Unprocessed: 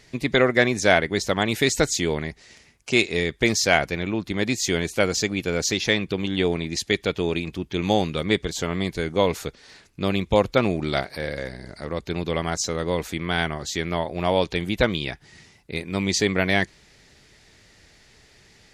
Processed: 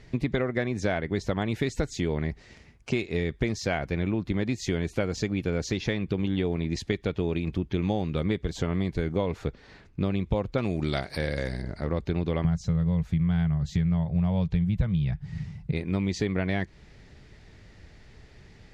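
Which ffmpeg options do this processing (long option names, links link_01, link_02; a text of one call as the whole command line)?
ffmpeg -i in.wav -filter_complex "[0:a]asettb=1/sr,asplit=3[link_01][link_02][link_03];[link_01]atrim=end=9.314[link_04];[link_02]atrim=start=9.31:end=10.01,asetpts=PTS-STARTPTS,afade=type=in:duration=0.004:curve=qsin,afade=type=out:start_time=0.696:duration=0.004:curve=qsin,highshelf=frequency=5700:gain=-8.5[link_05];[link_03]atrim=start=10.006[link_06];[link_04][link_05]acrossfade=duration=0.004:curve1=hsin:curve2=qsin[link_07];[link_07][link_06]acrossfade=duration=0.004:curve1=qsin:curve2=hsin,asettb=1/sr,asplit=3[link_08][link_09][link_10];[link_08]atrim=end=10.584[link_11];[link_09]atrim=start=10.58:end=11.62,asetpts=PTS-STARTPTS,afade=type=in:duration=0.004:curve=qsin,afade=type=out:start_time=1.036:duration=0.004:curve=qsin,equalizer=frequency=9000:width=0.38:gain=14[link_12];[link_10]atrim=start=11.616[link_13];[link_11][link_12]acrossfade=duration=0.004:curve1=hsin:curve2=qsin[link_14];[link_14][link_13]acrossfade=duration=0.004:curve1=qsin:curve2=hsin,asettb=1/sr,asplit=3[link_15][link_16][link_17];[link_15]atrim=end=12.444[link_18];[link_16]atrim=start=12.44:end=15.72,asetpts=PTS-STARTPTS,afade=type=in:duration=0.004:curve=qsin,afade=type=out:start_time=3.276:duration=0.004:curve=qsin,lowshelf=frequency=220:width_type=q:width=3:gain=10[link_19];[link_17]atrim=start=15.716[link_20];[link_18][link_19]acrossfade=duration=0.004:curve1=hsin:curve2=qsin[link_21];[link_21][link_20]acrossfade=duration=0.004:curve1=qsin:curve2=hsin,lowshelf=frequency=200:gain=10,acompressor=threshold=-23dB:ratio=6,aemphasis=mode=reproduction:type=75kf" out.wav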